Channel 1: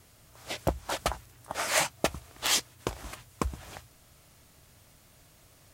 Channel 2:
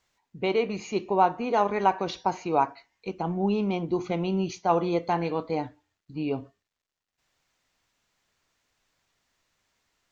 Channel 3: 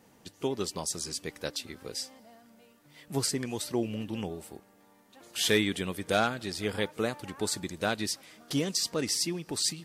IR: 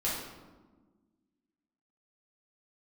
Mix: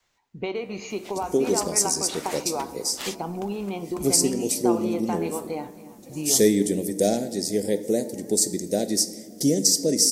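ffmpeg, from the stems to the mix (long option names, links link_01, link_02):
-filter_complex "[0:a]adelay=550,volume=-5.5dB[link_01];[1:a]acompressor=threshold=-29dB:ratio=6,volume=2dB,asplit=4[link_02][link_03][link_04][link_05];[link_03]volume=-20dB[link_06];[link_04]volume=-17.5dB[link_07];[2:a]firequalizer=gain_entry='entry(100,0);entry(160,10);entry(570,8);entry(1200,-29);entry(1900,-4);entry(2700,-14);entry(5600,12)':delay=0.05:min_phase=1,adelay=900,volume=-0.5dB,asplit=2[link_08][link_09];[link_09]volume=-15.5dB[link_10];[link_05]apad=whole_len=277036[link_11];[link_01][link_11]sidechaincompress=threshold=-32dB:ratio=3:attack=16:release=631[link_12];[3:a]atrim=start_sample=2205[link_13];[link_06][link_10]amix=inputs=2:normalize=0[link_14];[link_14][link_13]afir=irnorm=-1:irlink=0[link_15];[link_07]aecho=0:1:274|548|822|1096|1370|1644|1918|2192|2466:1|0.59|0.348|0.205|0.121|0.0715|0.0422|0.0249|0.0147[link_16];[link_12][link_02][link_08][link_15][link_16]amix=inputs=5:normalize=0,adynamicequalizer=threshold=0.00447:dfrequency=120:dqfactor=0.9:tfrequency=120:tqfactor=0.9:attack=5:release=100:ratio=0.375:range=3:mode=cutabove:tftype=bell"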